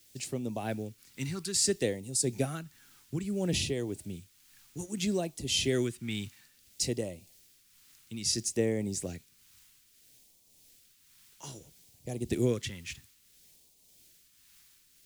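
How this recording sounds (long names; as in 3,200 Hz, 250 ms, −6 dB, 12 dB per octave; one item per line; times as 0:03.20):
a quantiser's noise floor 10 bits, dither triangular
tremolo triangle 1.8 Hz, depth 50%
phaser sweep stages 2, 0.6 Hz, lowest notch 580–1,400 Hz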